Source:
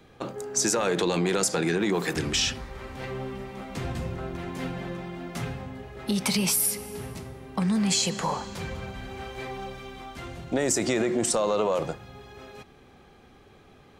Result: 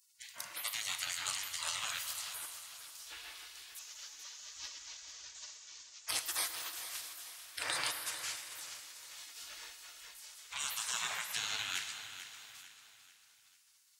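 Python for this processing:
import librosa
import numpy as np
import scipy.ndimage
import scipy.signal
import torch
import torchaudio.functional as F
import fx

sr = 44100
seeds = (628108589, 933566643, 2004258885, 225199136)

y = fx.delta_mod(x, sr, bps=32000, step_db=-34.0, at=(3.79, 6.09))
y = scipy.signal.sosfilt(scipy.signal.butter(2, 160.0, 'highpass', fs=sr, output='sos'), y)
y = fx.spec_gate(y, sr, threshold_db=-30, keep='weak')
y = fx.low_shelf(y, sr, hz=460.0, db=-10.5)
y = fx.echo_feedback(y, sr, ms=444, feedback_pct=43, wet_db=-12.0)
y = fx.rev_plate(y, sr, seeds[0], rt60_s=2.9, hf_ratio=0.95, predelay_ms=0, drr_db=8.0)
y = F.gain(torch.from_numpy(y), 7.5).numpy()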